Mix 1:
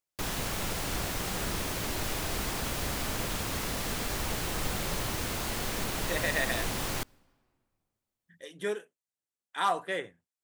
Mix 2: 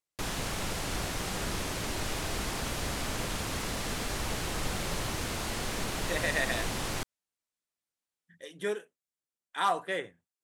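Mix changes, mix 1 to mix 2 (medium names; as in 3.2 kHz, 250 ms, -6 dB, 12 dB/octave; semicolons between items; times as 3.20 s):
background: add low-pass 11 kHz 12 dB/octave; reverb: off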